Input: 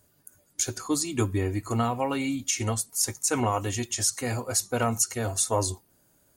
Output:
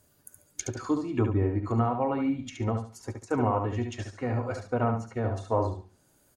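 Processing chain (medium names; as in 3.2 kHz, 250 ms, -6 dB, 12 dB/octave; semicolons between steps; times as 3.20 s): low-pass that closes with the level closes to 1.2 kHz, closed at -25 dBFS; feedback delay 71 ms, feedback 25%, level -6 dB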